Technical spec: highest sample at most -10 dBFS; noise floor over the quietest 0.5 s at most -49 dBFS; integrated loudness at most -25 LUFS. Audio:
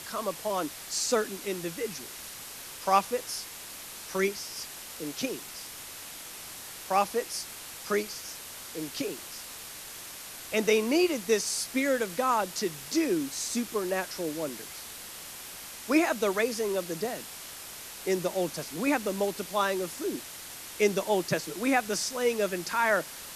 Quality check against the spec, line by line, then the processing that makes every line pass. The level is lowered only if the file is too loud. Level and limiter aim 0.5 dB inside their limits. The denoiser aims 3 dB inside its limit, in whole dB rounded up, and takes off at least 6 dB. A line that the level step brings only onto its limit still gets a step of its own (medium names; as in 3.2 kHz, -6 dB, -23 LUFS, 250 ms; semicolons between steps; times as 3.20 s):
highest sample -9.0 dBFS: fail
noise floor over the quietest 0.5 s -43 dBFS: fail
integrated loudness -30.5 LUFS: pass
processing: noise reduction 9 dB, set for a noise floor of -43 dBFS; peak limiter -10.5 dBFS